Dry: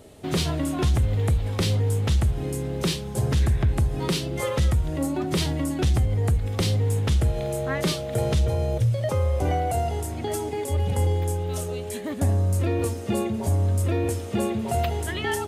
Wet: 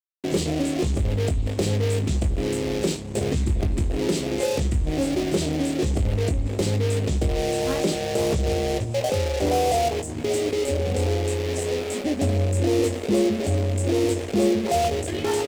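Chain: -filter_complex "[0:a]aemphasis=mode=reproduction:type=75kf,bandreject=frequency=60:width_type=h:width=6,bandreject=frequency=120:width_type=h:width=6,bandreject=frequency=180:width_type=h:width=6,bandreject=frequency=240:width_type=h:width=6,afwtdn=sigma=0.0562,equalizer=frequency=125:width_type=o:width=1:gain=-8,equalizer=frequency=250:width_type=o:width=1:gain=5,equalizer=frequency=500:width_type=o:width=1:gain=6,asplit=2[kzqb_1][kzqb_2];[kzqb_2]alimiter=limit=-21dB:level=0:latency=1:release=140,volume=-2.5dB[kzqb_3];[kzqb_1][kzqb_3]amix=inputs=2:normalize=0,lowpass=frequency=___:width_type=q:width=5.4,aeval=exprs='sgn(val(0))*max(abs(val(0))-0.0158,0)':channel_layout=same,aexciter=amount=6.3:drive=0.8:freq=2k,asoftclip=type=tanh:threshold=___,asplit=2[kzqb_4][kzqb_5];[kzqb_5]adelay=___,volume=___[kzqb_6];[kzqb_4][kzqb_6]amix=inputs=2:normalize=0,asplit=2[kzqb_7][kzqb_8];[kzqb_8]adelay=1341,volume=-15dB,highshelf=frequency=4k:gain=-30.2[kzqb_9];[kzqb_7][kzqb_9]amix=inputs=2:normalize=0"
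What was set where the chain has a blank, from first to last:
7.8k, -14dB, 20, -8dB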